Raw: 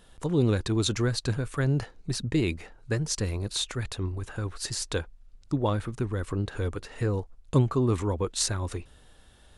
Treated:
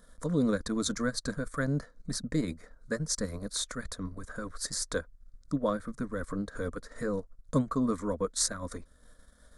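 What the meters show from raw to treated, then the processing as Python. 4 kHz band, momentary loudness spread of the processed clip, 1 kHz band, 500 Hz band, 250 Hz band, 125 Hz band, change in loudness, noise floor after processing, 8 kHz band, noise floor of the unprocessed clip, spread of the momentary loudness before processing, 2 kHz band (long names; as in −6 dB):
−5.0 dB, 11 LU, −2.5 dB, −3.5 dB, −2.0 dB, −10.0 dB, −4.0 dB, −60 dBFS, −0.5 dB, −55 dBFS, 9 LU, −2.0 dB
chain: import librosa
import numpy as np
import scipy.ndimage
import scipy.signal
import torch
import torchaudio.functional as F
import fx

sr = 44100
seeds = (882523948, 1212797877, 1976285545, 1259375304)

y = fx.fixed_phaser(x, sr, hz=550.0, stages=8)
y = fx.transient(y, sr, attack_db=-1, sustain_db=-7)
y = y * 10.0 ** (1.5 / 20.0)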